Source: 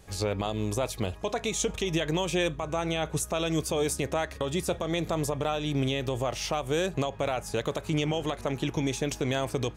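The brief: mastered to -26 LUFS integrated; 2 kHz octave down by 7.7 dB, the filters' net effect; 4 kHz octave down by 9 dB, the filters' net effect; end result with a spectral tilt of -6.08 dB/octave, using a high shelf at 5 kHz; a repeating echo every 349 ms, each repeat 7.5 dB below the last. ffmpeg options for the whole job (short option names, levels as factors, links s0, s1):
-af "equalizer=f=2000:t=o:g=-7,equalizer=f=4000:t=o:g=-7,highshelf=f=5000:g=-5,aecho=1:1:349|698|1047|1396|1745:0.422|0.177|0.0744|0.0312|0.0131,volume=1.58"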